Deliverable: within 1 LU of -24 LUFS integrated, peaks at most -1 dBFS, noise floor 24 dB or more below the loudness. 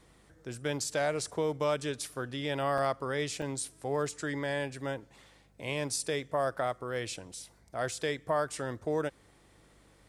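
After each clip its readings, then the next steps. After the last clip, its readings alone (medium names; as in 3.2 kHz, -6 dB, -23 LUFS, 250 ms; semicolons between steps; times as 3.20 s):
dropouts 2; longest dropout 1.3 ms; hum 50 Hz; highest harmonic 200 Hz; hum level -64 dBFS; loudness -33.5 LUFS; peak level -17.5 dBFS; loudness target -24.0 LUFS
-> interpolate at 2.78/3.42 s, 1.3 ms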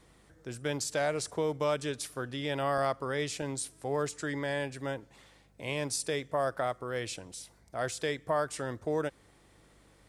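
dropouts 0; hum 50 Hz; highest harmonic 200 Hz; hum level -64 dBFS
-> de-hum 50 Hz, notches 4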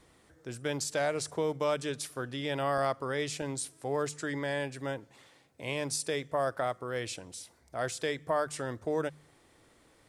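hum not found; loudness -33.5 LUFS; peak level -17.5 dBFS; loudness target -24.0 LUFS
-> trim +9.5 dB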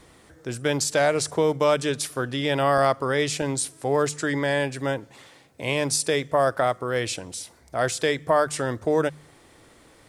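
loudness -24.0 LUFS; peak level -8.0 dBFS; noise floor -54 dBFS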